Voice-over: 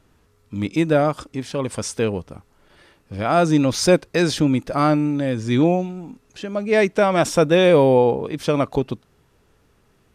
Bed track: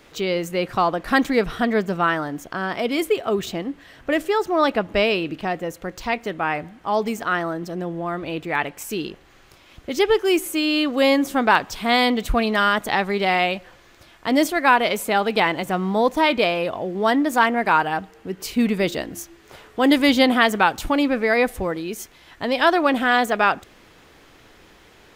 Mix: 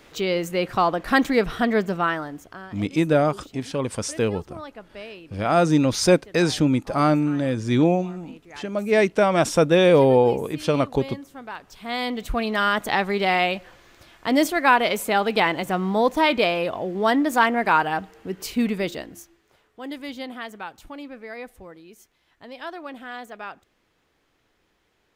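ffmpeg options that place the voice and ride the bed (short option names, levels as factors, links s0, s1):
-filter_complex "[0:a]adelay=2200,volume=0.841[s0];[1:a]volume=7.94,afade=t=out:st=1.82:d=0.92:silence=0.112202,afade=t=in:st=11.59:d=1.32:silence=0.11885,afade=t=out:st=18.36:d=1.17:silence=0.141254[s1];[s0][s1]amix=inputs=2:normalize=0"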